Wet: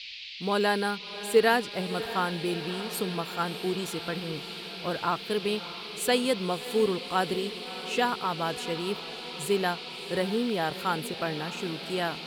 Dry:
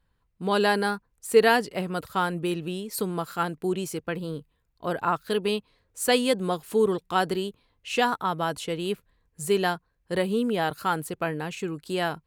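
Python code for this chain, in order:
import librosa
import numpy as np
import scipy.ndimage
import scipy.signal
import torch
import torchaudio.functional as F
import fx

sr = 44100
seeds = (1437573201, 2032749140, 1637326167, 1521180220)

y = fx.quant_companded(x, sr, bits=8)
y = fx.dmg_noise_band(y, sr, seeds[0], low_hz=2200.0, high_hz=4600.0, level_db=-39.0)
y = fx.echo_diffused(y, sr, ms=634, feedback_pct=70, wet_db=-14)
y = y * librosa.db_to_amplitude(-3.0)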